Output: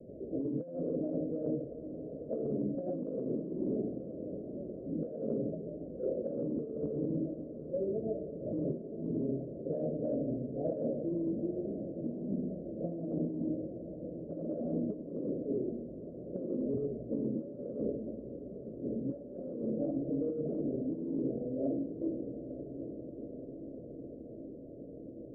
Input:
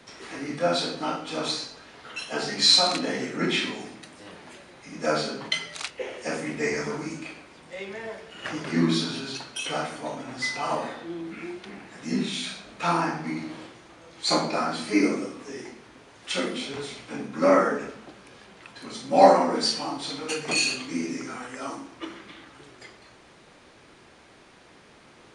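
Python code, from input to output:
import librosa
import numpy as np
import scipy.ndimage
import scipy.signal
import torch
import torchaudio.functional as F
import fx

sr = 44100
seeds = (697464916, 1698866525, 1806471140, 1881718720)

y = scipy.signal.sosfilt(scipy.signal.butter(16, 620.0, 'lowpass', fs=sr, output='sos'), x)
y = fx.hum_notches(y, sr, base_hz=50, count=9)
y = fx.over_compress(y, sr, threshold_db=-37.0, ratio=-1.0)
y = fx.echo_diffused(y, sr, ms=927, feedback_pct=74, wet_db=-11.0)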